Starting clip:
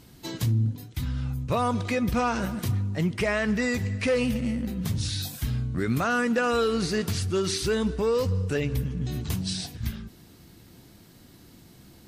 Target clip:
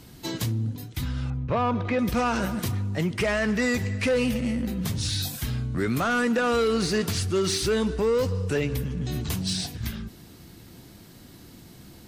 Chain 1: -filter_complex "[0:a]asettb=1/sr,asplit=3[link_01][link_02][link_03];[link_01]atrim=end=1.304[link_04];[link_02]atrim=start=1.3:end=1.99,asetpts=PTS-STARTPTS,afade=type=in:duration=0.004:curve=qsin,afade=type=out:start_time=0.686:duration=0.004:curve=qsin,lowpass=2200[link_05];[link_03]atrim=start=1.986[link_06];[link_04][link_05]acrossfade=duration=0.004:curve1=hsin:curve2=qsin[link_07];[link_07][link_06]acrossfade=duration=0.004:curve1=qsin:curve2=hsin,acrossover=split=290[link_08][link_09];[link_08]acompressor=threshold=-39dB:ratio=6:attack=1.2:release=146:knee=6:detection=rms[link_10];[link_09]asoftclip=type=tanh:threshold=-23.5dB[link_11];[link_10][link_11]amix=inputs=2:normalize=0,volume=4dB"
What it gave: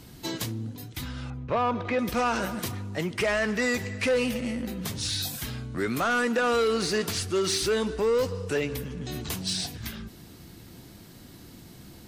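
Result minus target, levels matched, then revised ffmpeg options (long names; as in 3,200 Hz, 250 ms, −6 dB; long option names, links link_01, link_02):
downward compressor: peak gain reduction +9 dB
-filter_complex "[0:a]asettb=1/sr,asplit=3[link_01][link_02][link_03];[link_01]atrim=end=1.304[link_04];[link_02]atrim=start=1.3:end=1.99,asetpts=PTS-STARTPTS,afade=type=in:duration=0.004:curve=qsin,afade=type=out:start_time=0.686:duration=0.004:curve=qsin,lowpass=2200[link_05];[link_03]atrim=start=1.986[link_06];[link_04][link_05]acrossfade=duration=0.004:curve1=hsin:curve2=qsin[link_07];[link_07][link_06]acrossfade=duration=0.004:curve1=qsin:curve2=hsin,acrossover=split=290[link_08][link_09];[link_08]acompressor=threshold=-28.5dB:ratio=6:attack=1.2:release=146:knee=6:detection=rms[link_10];[link_09]asoftclip=type=tanh:threshold=-23.5dB[link_11];[link_10][link_11]amix=inputs=2:normalize=0,volume=4dB"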